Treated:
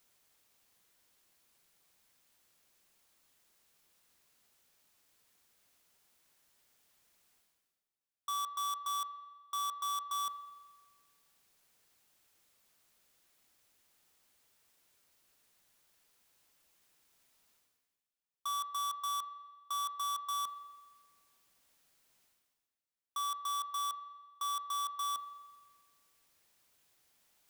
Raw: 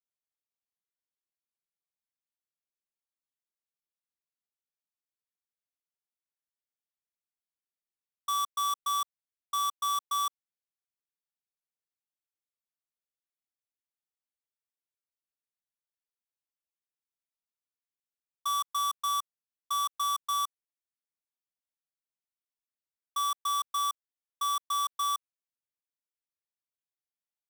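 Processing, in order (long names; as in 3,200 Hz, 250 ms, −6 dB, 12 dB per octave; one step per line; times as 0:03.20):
reversed playback
upward compression, threshold −52 dBFS
reversed playback
spring reverb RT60 1.4 s, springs 42 ms, chirp 30 ms, DRR 16 dB
gain into a clipping stage and back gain 35 dB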